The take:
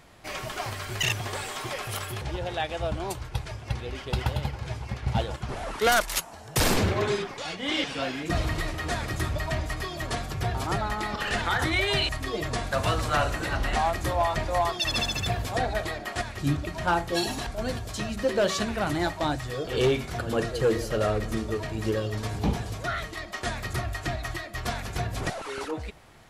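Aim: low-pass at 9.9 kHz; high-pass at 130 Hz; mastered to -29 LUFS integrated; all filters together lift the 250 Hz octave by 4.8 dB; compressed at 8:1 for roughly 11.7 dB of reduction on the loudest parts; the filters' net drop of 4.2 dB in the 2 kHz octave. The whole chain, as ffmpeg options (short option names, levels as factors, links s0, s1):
-af "highpass=130,lowpass=9900,equalizer=f=250:t=o:g=7,equalizer=f=2000:t=o:g=-5.5,acompressor=threshold=0.0316:ratio=8,volume=2"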